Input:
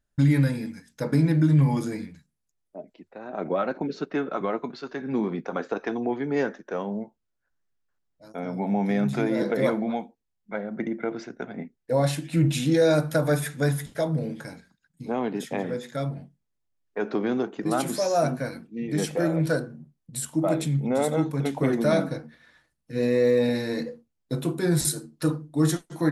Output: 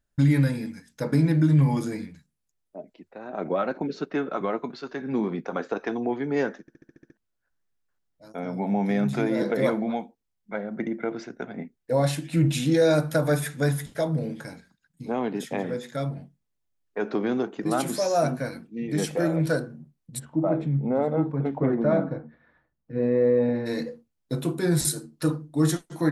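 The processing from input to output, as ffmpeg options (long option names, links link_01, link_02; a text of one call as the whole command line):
ffmpeg -i in.wav -filter_complex "[0:a]asplit=3[link_01][link_02][link_03];[link_01]afade=type=out:start_time=20.18:duration=0.02[link_04];[link_02]lowpass=1300,afade=type=in:start_time=20.18:duration=0.02,afade=type=out:start_time=23.65:duration=0.02[link_05];[link_03]afade=type=in:start_time=23.65:duration=0.02[link_06];[link_04][link_05][link_06]amix=inputs=3:normalize=0,asplit=9[link_07][link_08][link_09][link_10][link_11][link_12][link_13][link_14][link_15];[link_07]atrim=end=6.682[link_16];[link_08]atrim=start=6.608:end=6.682[link_17];[link_09]atrim=start=6.608:end=6.682[link_18];[link_10]atrim=start=6.608:end=6.682[link_19];[link_11]atrim=start=6.608:end=6.682[link_20];[link_12]atrim=start=6.608:end=6.682[link_21];[link_13]atrim=start=6.608:end=6.682[link_22];[link_14]atrim=start=6.608:end=6.682[link_23];[link_15]atrim=start=7.168[link_24];[link_16][link_17]acrossfade=duration=0.004:curve1=hsin:curve2=hsin[link_25];[link_25][link_18]acrossfade=duration=0.004:curve1=hsin:curve2=hsin[link_26];[link_26][link_19]acrossfade=duration=0.004:curve1=hsin:curve2=hsin[link_27];[link_27][link_20]acrossfade=duration=0.004:curve1=hsin:curve2=hsin[link_28];[link_28][link_21]acrossfade=duration=0.004:curve1=hsin:curve2=hsin[link_29];[link_29][link_22]acrossfade=duration=0.004:curve1=hsin:curve2=hsin[link_30];[link_30][link_23]acrossfade=duration=0.004:curve1=hsin:curve2=hsin[link_31];[link_31][link_24]acrossfade=duration=0.004:curve1=hsin:curve2=hsin" out.wav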